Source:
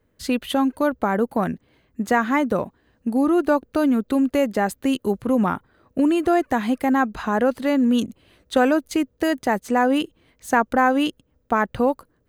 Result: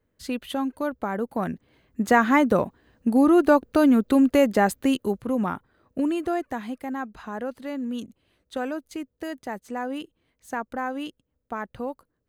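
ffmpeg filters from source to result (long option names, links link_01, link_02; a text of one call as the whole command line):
ffmpeg -i in.wav -af "volume=1.5dB,afade=type=in:start_time=1.26:duration=0.96:silence=0.375837,afade=type=out:start_time=4.67:duration=0.55:silence=0.446684,afade=type=out:start_time=5.98:duration=0.8:silence=0.473151" out.wav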